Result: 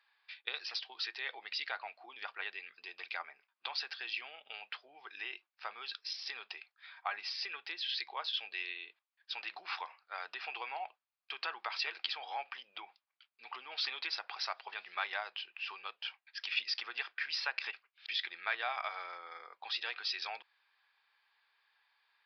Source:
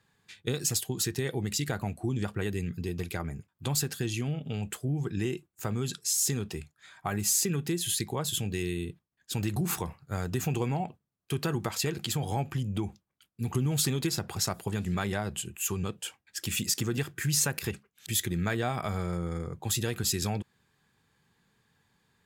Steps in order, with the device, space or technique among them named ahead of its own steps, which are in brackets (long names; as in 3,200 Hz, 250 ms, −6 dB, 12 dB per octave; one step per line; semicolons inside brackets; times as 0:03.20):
musical greeting card (downsampling to 11,025 Hz; high-pass filter 790 Hz 24 dB per octave; parametric band 2,400 Hz +5 dB 0.39 octaves)
level −1.5 dB